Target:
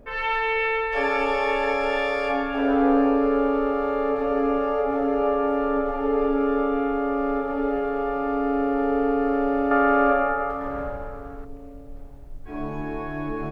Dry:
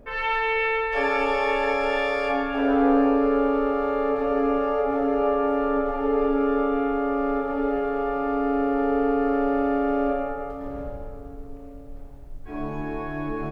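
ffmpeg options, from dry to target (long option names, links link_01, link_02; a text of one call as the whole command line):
ffmpeg -i in.wav -filter_complex "[0:a]asettb=1/sr,asplit=3[link_01][link_02][link_03];[link_01]atrim=end=9.714[link_04];[link_02]atrim=start=9.71:end=11.45,asetpts=PTS-STARTPTS,afade=type=in:duration=0.004:curve=qsin,afade=type=out:start_time=1.736:duration=0.004:curve=qsin,equalizer=frequency=1400:width=0.75:gain=13[link_05];[link_03]atrim=start=11.446[link_06];[link_04][link_05]acrossfade=duration=0.004:curve1=hsin:curve2=qsin[link_07];[link_07][link_06]acrossfade=duration=0.004:curve1=qsin:curve2=hsin" out.wav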